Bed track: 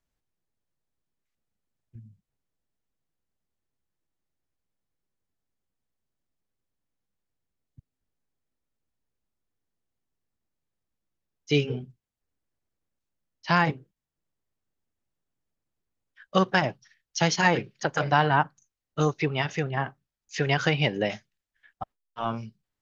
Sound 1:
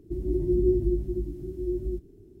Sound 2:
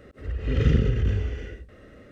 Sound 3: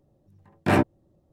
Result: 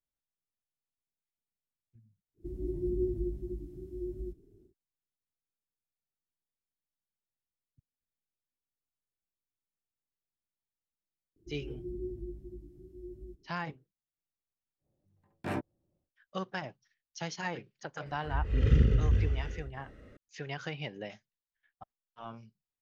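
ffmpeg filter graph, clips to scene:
-filter_complex "[1:a]asplit=2[a][b];[0:a]volume=-15dB[c];[2:a]lowshelf=f=86:g=8.5[d];[a]atrim=end=2.4,asetpts=PTS-STARTPTS,volume=-9dB,afade=t=in:d=0.1,afade=t=out:st=2.3:d=0.1,adelay=2340[e];[b]atrim=end=2.4,asetpts=PTS-STARTPTS,volume=-16.5dB,afade=t=in:d=0.004:c=hsin,afade=t=out:st=2.396:d=0.004:c=hsin,adelay=11360[f];[3:a]atrim=end=1.32,asetpts=PTS-STARTPTS,volume=-15dB,afade=t=in:d=0.1,afade=t=out:st=1.22:d=0.1,adelay=14780[g];[d]atrim=end=2.11,asetpts=PTS-STARTPTS,volume=-7.5dB,afade=t=in:d=0.004:c=hsin,afade=t=out:st=2.106:d=0.004:c=hsin,adelay=18060[h];[c][e][f][g][h]amix=inputs=5:normalize=0"

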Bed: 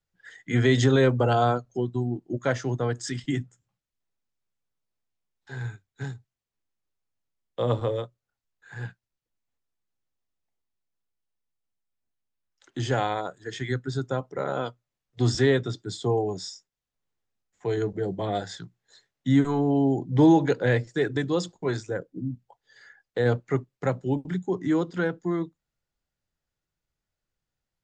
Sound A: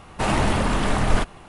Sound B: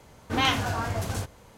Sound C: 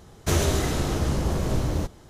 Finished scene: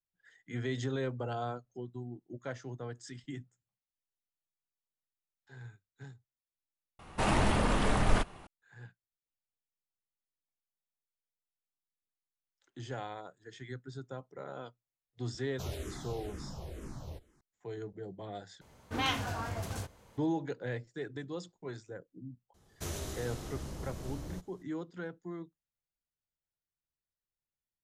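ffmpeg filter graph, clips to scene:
-filter_complex "[3:a]asplit=2[a][b];[0:a]volume=-15dB[c];[a]asplit=2[d][e];[e]afreqshift=-2.1[f];[d][f]amix=inputs=2:normalize=1[g];[b]highshelf=f=5k:g=6[h];[c]asplit=2[i][j];[i]atrim=end=18.614[k];[2:a]atrim=end=1.57,asetpts=PTS-STARTPTS,volume=-8dB[l];[j]atrim=start=20.176[m];[1:a]atrim=end=1.48,asetpts=PTS-STARTPTS,volume=-7dB,afade=t=in:d=0.004:c=hsin,afade=t=out:st=1.476:d=0.004:c=hsin,adelay=6990[n];[g]atrim=end=2.09,asetpts=PTS-STARTPTS,volume=-16dB,afade=t=in:d=0.004:c=hsin,afade=t=out:st=2.086:d=0.004:c=hsin,adelay=15320[o];[h]atrim=end=2.09,asetpts=PTS-STARTPTS,volume=-17.5dB,afade=t=in:d=0.004:c=hsin,afade=t=out:st=2.086:d=0.004:c=hsin,adelay=22540[p];[k][l]acrossfade=d=0.004:c1=hsin:c2=hsin[q];[q][m]acrossfade=d=0.004:c1=hsin:c2=hsin[r];[r][n][o][p]amix=inputs=4:normalize=0"

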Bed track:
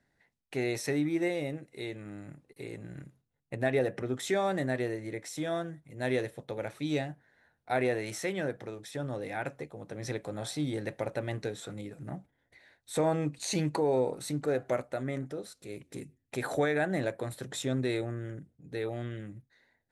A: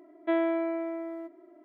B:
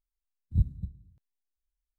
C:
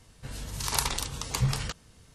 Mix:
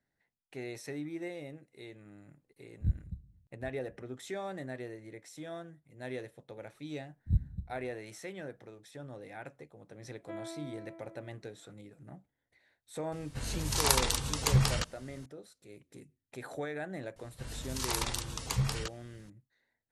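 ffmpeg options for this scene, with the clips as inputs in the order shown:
-filter_complex "[2:a]asplit=2[a][b];[3:a]asplit=2[c][d];[0:a]volume=-10dB[e];[a]aecho=1:1:780:0.0891[f];[c]acontrast=21[g];[d]alimiter=limit=-10dB:level=0:latency=1:release=36[h];[f]atrim=end=1.98,asetpts=PTS-STARTPTS,volume=-5.5dB,afade=t=in:d=0.004:c=hsin,afade=t=out:st=1.976:d=0.004:c=hsin,adelay=2290[i];[b]atrim=end=1.98,asetpts=PTS-STARTPTS,volume=-3.5dB,afade=t=in:d=0.004:c=hsin,afade=t=out:st=1.976:d=0.004:c=hsin,adelay=6750[j];[1:a]atrim=end=1.64,asetpts=PTS-STARTPTS,volume=-16.5dB,afade=t=in:d=0.004:c=hsin,afade=t=out:st=1.636:d=0.004:c=hsin,adelay=10010[k];[g]atrim=end=2.14,asetpts=PTS-STARTPTS,volume=-3.5dB,afade=t=in:d=0.004:c=hsin,afade=t=out:st=2.136:d=0.004:c=hsin,adelay=13120[l];[h]atrim=end=2.14,asetpts=PTS-STARTPTS,volume=-4dB,afade=t=in:d=0.004:c=hsin,afade=t=out:st=2.136:d=0.004:c=hsin,adelay=756756S[m];[e][i][j][k][l][m]amix=inputs=6:normalize=0"

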